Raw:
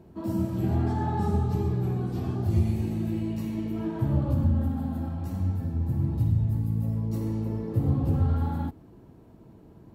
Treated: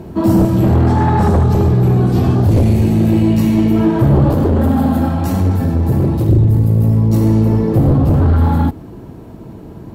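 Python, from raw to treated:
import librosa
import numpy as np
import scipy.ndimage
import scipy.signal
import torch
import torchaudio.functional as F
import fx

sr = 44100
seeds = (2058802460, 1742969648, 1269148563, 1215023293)

y = fx.fold_sine(x, sr, drive_db=8, ceiling_db=-12.5)
y = fx.low_shelf(y, sr, hz=180.0, db=-10.5, at=(4.29, 6.29))
y = fx.rider(y, sr, range_db=4, speed_s=0.5)
y = F.gain(torch.from_numpy(y), 7.0).numpy()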